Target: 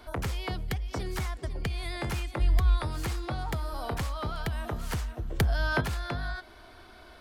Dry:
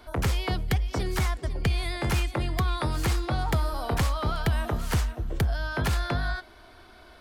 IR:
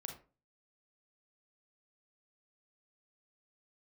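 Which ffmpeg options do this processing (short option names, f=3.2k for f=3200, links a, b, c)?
-filter_complex "[0:a]acompressor=threshold=-31dB:ratio=3,asplit=3[a][b][c];[a]afade=t=out:st=2.39:d=0.02[d];[b]asubboost=boost=11:cutoff=59,afade=t=in:st=2.39:d=0.02,afade=t=out:st=2.86:d=0.02[e];[c]afade=t=in:st=2.86:d=0.02[f];[d][e][f]amix=inputs=3:normalize=0,asettb=1/sr,asplit=3[g][h][i];[g]atrim=end=5.394[j];[h]atrim=start=5.39:end=5.81,asetpts=PTS-STARTPTS,afade=t=in:d=0.004:c=qsin,afade=t=out:st=0.416:d=0.004:c=qsin,acontrast=78[k];[i]atrim=start=5.806[l];[j][k]acrossfade=d=0.004:c1=hsin:c2=qsin[m];[m][l]acrossfade=d=0.004:c1=qsin:c2=hsin"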